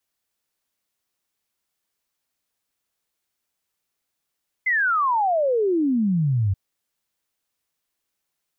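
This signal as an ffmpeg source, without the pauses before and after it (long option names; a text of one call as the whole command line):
ffmpeg -f lavfi -i "aevalsrc='0.133*clip(min(t,1.88-t)/0.01,0,1)*sin(2*PI*2100*1.88/log(92/2100)*(exp(log(92/2100)*t/1.88)-1))':duration=1.88:sample_rate=44100" out.wav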